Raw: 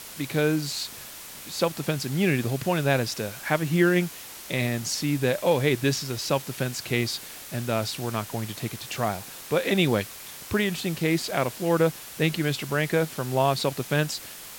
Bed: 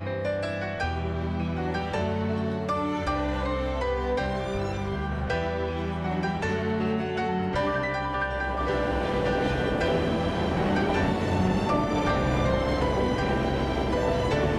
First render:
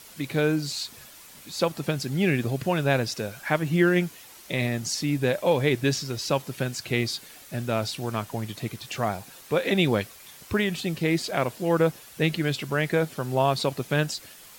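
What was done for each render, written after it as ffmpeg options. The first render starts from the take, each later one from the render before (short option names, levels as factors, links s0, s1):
-af "afftdn=nr=8:nf=-42"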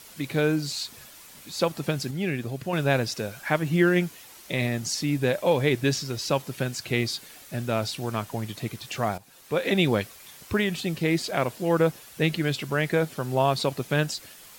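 -filter_complex "[0:a]asplit=4[s0][s1][s2][s3];[s0]atrim=end=2.112[s4];[s1]atrim=start=2.108:end=2.732,asetpts=PTS-STARTPTS,volume=0.562[s5];[s2]atrim=start=2.728:end=9.18,asetpts=PTS-STARTPTS,afade=t=out:st=6.448:d=0.004:c=hsin:silence=0.211349[s6];[s3]atrim=start=9.18,asetpts=PTS-STARTPTS,afade=t=in:d=0.49:silence=0.211349[s7];[s4][s5]acrossfade=d=0.004:c1=hsin:c2=hsin[s8];[s6][s7]concat=n=2:v=0:a=1[s9];[s8][s9]acrossfade=d=0.004:c1=hsin:c2=hsin"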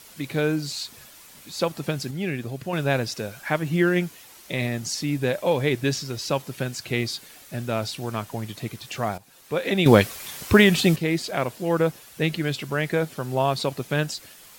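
-filter_complex "[0:a]asplit=3[s0][s1][s2];[s0]atrim=end=9.862[s3];[s1]atrim=start=9.858:end=10.962,asetpts=PTS-STARTPTS,volume=3.16[s4];[s2]atrim=start=10.958[s5];[s3][s4]acrossfade=d=0.004:c1=hsin:c2=hsin[s6];[s6][s5]acrossfade=d=0.004:c1=hsin:c2=hsin"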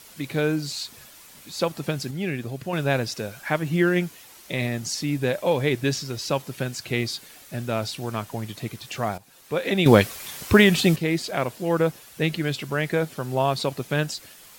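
-af anull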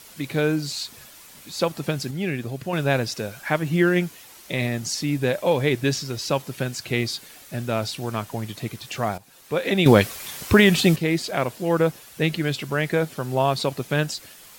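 -af "volume=1.19,alimiter=limit=0.708:level=0:latency=1"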